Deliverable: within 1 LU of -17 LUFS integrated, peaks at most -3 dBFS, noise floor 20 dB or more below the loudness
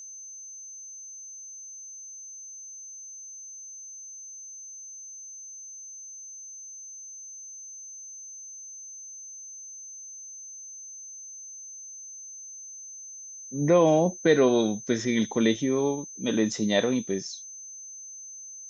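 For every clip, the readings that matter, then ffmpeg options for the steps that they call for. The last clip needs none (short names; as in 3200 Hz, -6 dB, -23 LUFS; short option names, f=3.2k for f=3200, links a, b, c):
steady tone 6200 Hz; tone level -40 dBFS; loudness -30.5 LUFS; peak -9.0 dBFS; loudness target -17.0 LUFS
-> -af "bandreject=f=6.2k:w=30"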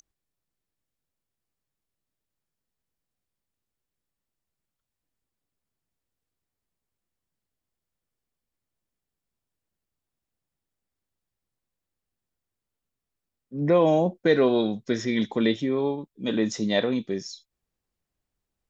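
steady tone none; loudness -24.5 LUFS; peak -9.0 dBFS; loudness target -17.0 LUFS
-> -af "volume=7.5dB,alimiter=limit=-3dB:level=0:latency=1"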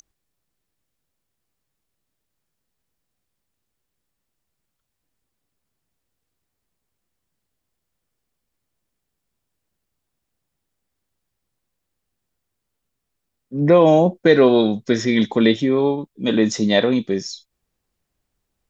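loudness -17.0 LUFS; peak -3.0 dBFS; noise floor -79 dBFS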